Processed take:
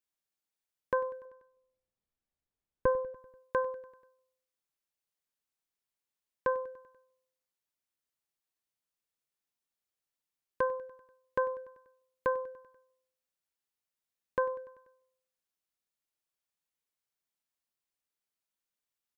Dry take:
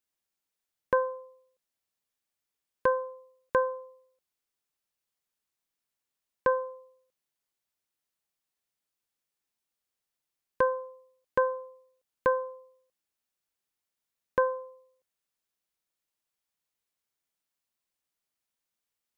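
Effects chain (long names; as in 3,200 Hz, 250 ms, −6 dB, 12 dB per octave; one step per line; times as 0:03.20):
0:01.25–0:03.14: spectral tilt −3.5 dB per octave
on a send: repeating echo 97 ms, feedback 60%, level −18.5 dB
on the sum: level −5 dB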